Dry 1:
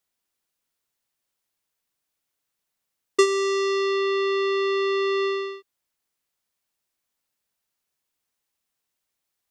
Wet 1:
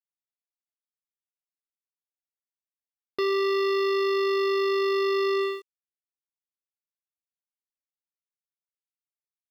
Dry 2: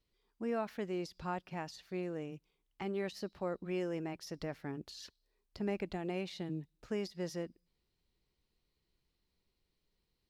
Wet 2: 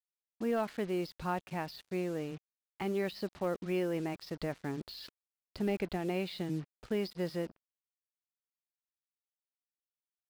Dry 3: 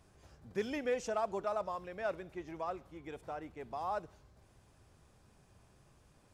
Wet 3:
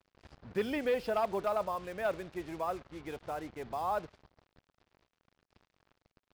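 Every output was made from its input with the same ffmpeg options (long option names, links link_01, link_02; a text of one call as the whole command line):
ffmpeg -i in.wav -af "aresample=11025,volume=28dB,asoftclip=hard,volume=-28dB,aresample=44100,acrusher=bits=8:mix=0:aa=0.5,volume=4dB" out.wav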